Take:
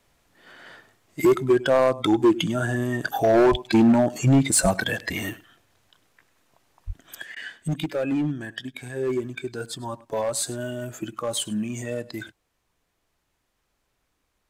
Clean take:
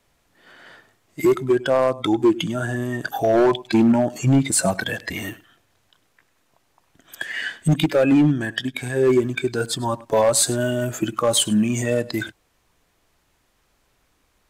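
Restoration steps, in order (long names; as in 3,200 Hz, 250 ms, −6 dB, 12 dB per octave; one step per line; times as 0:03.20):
clipped peaks rebuilt −12.5 dBFS
high-pass at the plosives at 0:03.50/0:04.62/0:06.86
repair the gap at 0:07.35, 12 ms
level correction +9 dB, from 0:07.21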